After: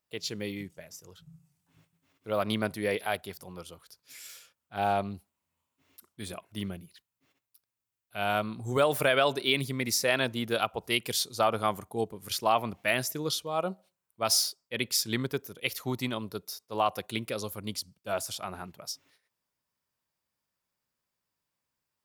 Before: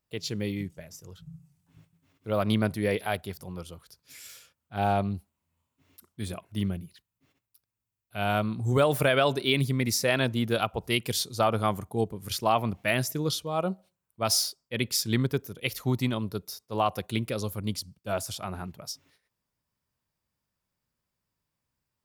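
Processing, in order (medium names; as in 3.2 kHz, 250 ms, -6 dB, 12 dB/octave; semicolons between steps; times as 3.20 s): bass shelf 210 Hz -12 dB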